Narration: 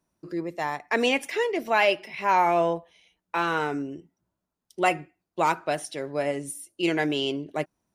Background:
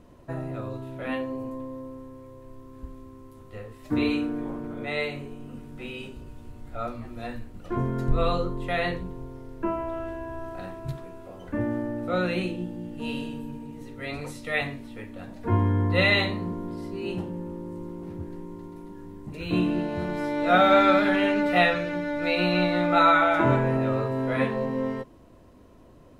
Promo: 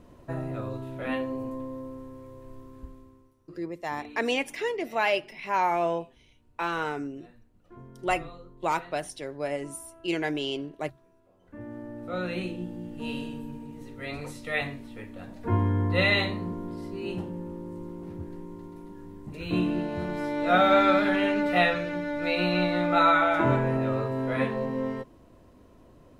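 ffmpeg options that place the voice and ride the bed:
ffmpeg -i stem1.wav -i stem2.wav -filter_complex "[0:a]adelay=3250,volume=-4dB[link_01];[1:a]volume=18.5dB,afade=type=out:start_time=2.58:duration=0.78:silence=0.0944061,afade=type=in:start_time=11.41:duration=1.34:silence=0.11885[link_02];[link_01][link_02]amix=inputs=2:normalize=0" out.wav

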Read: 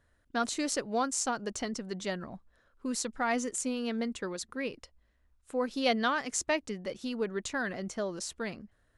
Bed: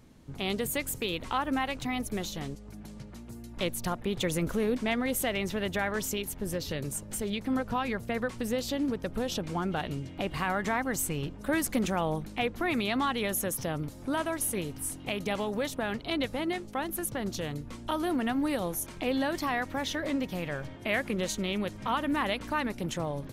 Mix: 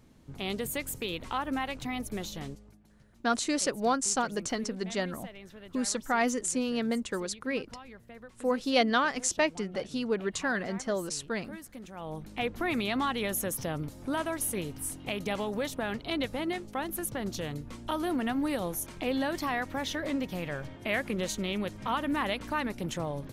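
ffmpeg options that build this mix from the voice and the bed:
ffmpeg -i stem1.wav -i stem2.wav -filter_complex "[0:a]adelay=2900,volume=3dB[link_01];[1:a]volume=13.5dB,afade=type=out:start_time=2.49:duration=0.3:silence=0.188365,afade=type=in:start_time=11.92:duration=0.58:silence=0.158489[link_02];[link_01][link_02]amix=inputs=2:normalize=0" out.wav

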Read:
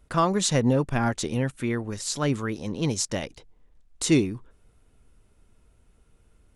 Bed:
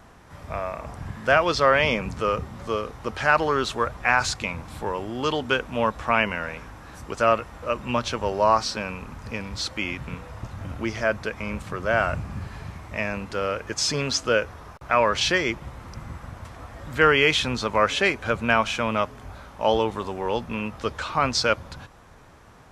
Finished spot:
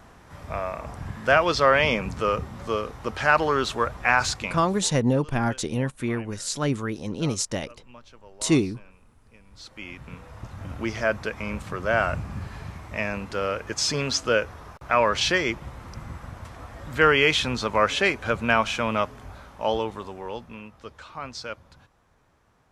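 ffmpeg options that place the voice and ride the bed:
ffmpeg -i stem1.wav -i stem2.wav -filter_complex "[0:a]adelay=4400,volume=0dB[link_01];[1:a]volume=23dB,afade=type=out:start_time=4.3:duration=0.63:silence=0.0668344,afade=type=in:start_time=9.45:duration=1.46:silence=0.0707946,afade=type=out:start_time=19.03:duration=1.67:silence=0.223872[link_02];[link_01][link_02]amix=inputs=2:normalize=0" out.wav

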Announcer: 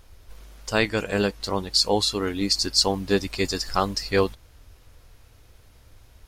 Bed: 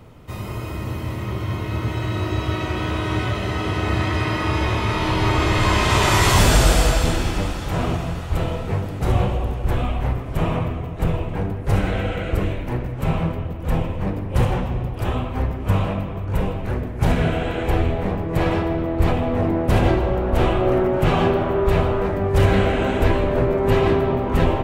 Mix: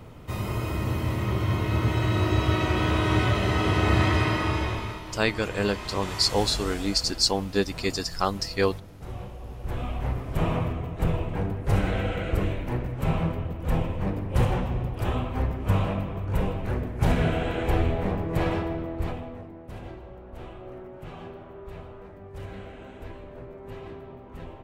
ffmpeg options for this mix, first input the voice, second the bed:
ffmpeg -i stem1.wav -i stem2.wav -filter_complex "[0:a]adelay=4450,volume=-2.5dB[link_01];[1:a]volume=14.5dB,afade=type=out:start_time=4.06:duration=0.97:silence=0.11885,afade=type=in:start_time=9.38:duration=0.97:silence=0.188365,afade=type=out:start_time=18.21:duration=1.25:silence=0.112202[link_02];[link_01][link_02]amix=inputs=2:normalize=0" out.wav

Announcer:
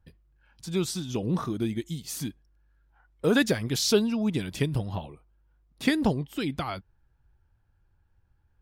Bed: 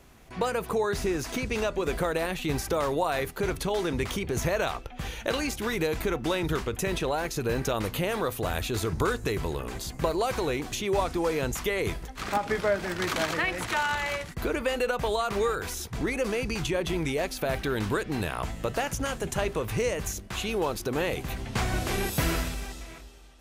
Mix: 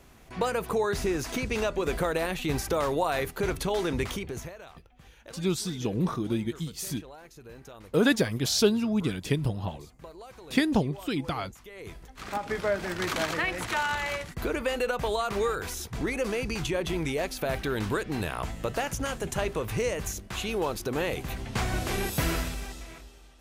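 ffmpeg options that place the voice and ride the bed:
ffmpeg -i stem1.wav -i stem2.wav -filter_complex "[0:a]adelay=4700,volume=0dB[link_01];[1:a]volume=18dB,afade=type=out:start_time=4:duration=0.54:silence=0.112202,afade=type=in:start_time=11.7:duration=1.12:silence=0.125893[link_02];[link_01][link_02]amix=inputs=2:normalize=0" out.wav

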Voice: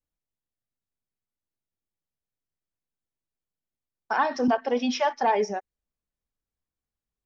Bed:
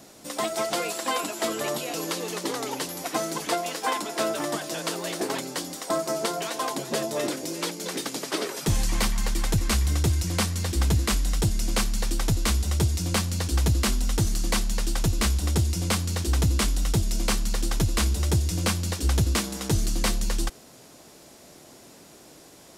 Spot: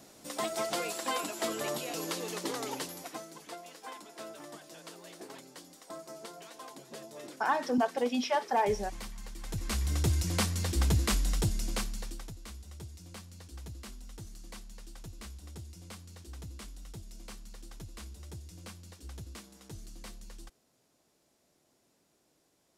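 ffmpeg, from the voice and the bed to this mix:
ffmpeg -i stem1.wav -i stem2.wav -filter_complex "[0:a]adelay=3300,volume=-5dB[link_01];[1:a]volume=8dB,afade=type=out:start_time=2.74:duration=0.51:silence=0.237137,afade=type=in:start_time=9.39:duration=0.75:silence=0.199526,afade=type=out:start_time=11.27:duration=1.06:silence=0.125893[link_02];[link_01][link_02]amix=inputs=2:normalize=0" out.wav

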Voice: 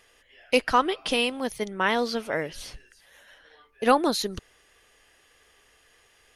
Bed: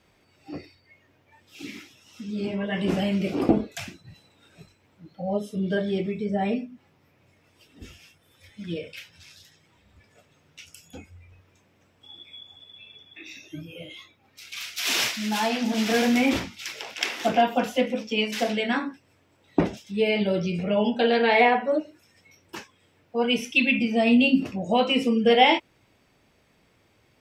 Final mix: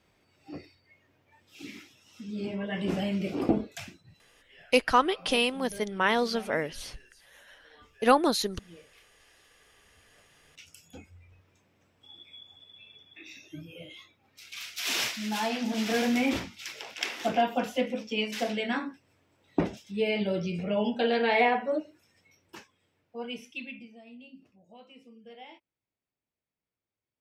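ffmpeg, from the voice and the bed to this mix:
ffmpeg -i stem1.wav -i stem2.wav -filter_complex "[0:a]adelay=4200,volume=-1dB[link_01];[1:a]volume=9.5dB,afade=type=out:start_time=3.72:duration=0.83:silence=0.188365,afade=type=in:start_time=9.39:duration=1.3:silence=0.188365,afade=type=out:start_time=21.66:duration=2.35:silence=0.0501187[link_02];[link_01][link_02]amix=inputs=2:normalize=0" out.wav

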